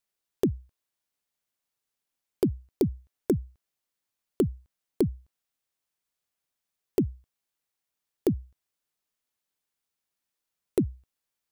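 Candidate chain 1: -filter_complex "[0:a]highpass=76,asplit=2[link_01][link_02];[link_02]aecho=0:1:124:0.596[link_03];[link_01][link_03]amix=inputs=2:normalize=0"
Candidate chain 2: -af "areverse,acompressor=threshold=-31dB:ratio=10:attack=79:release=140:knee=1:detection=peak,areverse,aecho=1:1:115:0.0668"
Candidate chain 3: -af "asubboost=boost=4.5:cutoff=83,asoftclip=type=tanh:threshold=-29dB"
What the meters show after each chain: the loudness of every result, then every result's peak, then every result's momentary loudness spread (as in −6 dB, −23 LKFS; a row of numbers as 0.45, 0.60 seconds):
−30.0, −36.0, −38.5 LKFS; −11.5, −21.5, −29.0 dBFS; 6, 14, 7 LU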